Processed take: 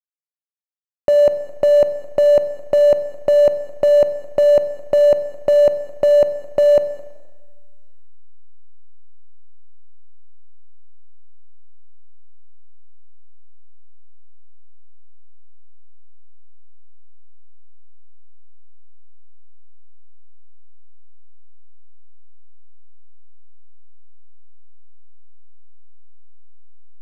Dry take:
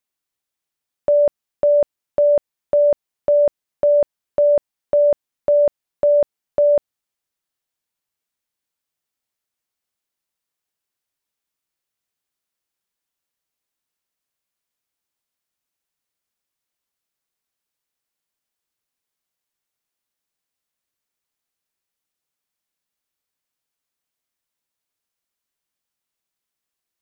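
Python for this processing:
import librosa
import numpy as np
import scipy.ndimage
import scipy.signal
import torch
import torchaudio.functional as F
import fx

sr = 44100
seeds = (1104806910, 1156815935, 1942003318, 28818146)

p1 = fx.delta_hold(x, sr, step_db=-25.0)
p2 = fx.over_compress(p1, sr, threshold_db=-23.0, ratio=-0.5)
p3 = p1 + (p2 * 10.0 ** (1.5 / 20.0))
p4 = fx.air_absorb(p3, sr, metres=65.0)
p5 = p4 + 10.0 ** (-23.0 / 20.0) * np.pad(p4, (int(214 * sr / 1000.0), 0))[:len(p4)]
y = fx.rev_schroeder(p5, sr, rt60_s=1.3, comb_ms=32, drr_db=11.5)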